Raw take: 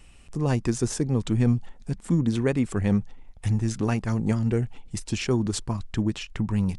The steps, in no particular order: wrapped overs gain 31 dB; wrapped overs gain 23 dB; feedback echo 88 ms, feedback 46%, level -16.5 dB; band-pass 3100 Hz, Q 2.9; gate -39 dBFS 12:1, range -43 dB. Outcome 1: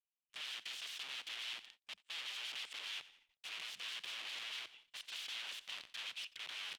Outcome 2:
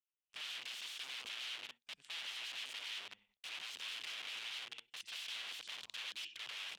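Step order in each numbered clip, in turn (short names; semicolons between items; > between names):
second wrapped overs > first wrapped overs > feedback echo > gate > band-pass; feedback echo > second wrapped overs > gate > first wrapped overs > band-pass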